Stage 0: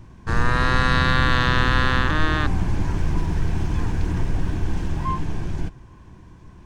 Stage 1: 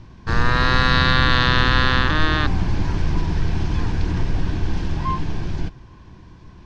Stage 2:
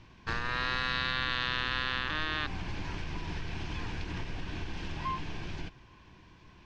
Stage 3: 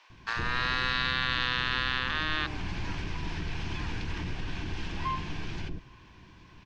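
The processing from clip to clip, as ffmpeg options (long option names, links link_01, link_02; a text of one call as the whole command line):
ffmpeg -i in.wav -af "lowpass=frequency=4700:width_type=q:width=1.9,volume=1.5dB" out.wav
ffmpeg -i in.wav -af "equalizer=frequency=2600:width=1.5:gain=7.5,acompressor=threshold=-18dB:ratio=6,lowshelf=frequency=290:gain=-7.5,volume=-7.5dB" out.wav
ffmpeg -i in.wav -filter_complex "[0:a]acrossover=split=590[link_01][link_02];[link_01]adelay=100[link_03];[link_03][link_02]amix=inputs=2:normalize=0,volume=3dB" out.wav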